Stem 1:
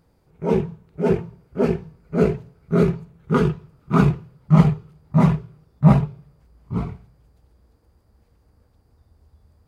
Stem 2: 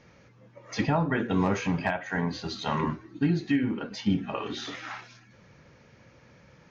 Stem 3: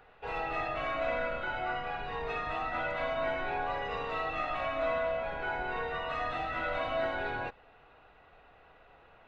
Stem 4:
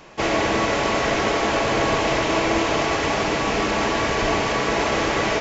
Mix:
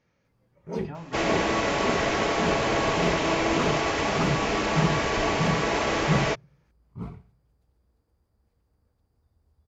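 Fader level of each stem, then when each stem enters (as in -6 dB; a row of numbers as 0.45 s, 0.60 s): -11.5 dB, -15.0 dB, mute, -4.0 dB; 0.25 s, 0.00 s, mute, 0.95 s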